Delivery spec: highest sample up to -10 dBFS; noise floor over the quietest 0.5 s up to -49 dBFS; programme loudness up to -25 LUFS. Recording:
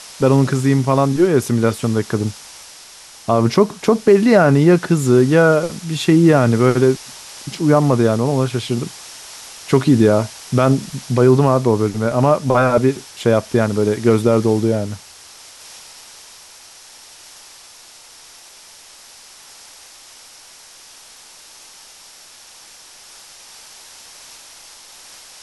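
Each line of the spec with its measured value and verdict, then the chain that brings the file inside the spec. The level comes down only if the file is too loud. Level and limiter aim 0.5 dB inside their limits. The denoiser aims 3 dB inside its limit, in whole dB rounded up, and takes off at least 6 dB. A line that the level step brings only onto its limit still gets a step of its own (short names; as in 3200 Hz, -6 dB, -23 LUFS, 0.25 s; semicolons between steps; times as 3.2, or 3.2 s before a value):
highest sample -2.0 dBFS: fail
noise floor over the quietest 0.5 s -43 dBFS: fail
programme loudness -15.5 LUFS: fail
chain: gain -10 dB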